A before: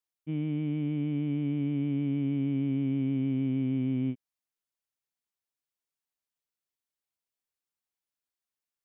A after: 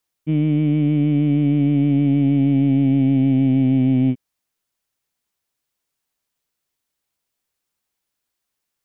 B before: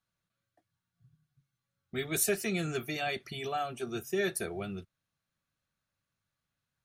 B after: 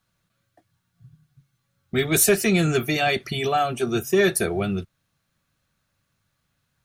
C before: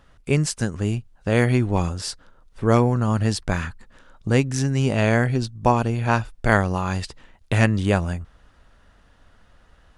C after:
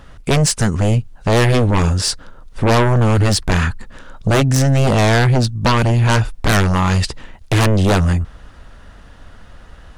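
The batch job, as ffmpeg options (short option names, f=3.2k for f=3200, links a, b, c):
-filter_complex "[0:a]lowshelf=f=290:g=3,asplit=2[a][b];[b]aeval=exprs='1.06*sin(PI/2*8.91*val(0)/1.06)':c=same,volume=-8.5dB[c];[a][c]amix=inputs=2:normalize=0,volume=-4dB"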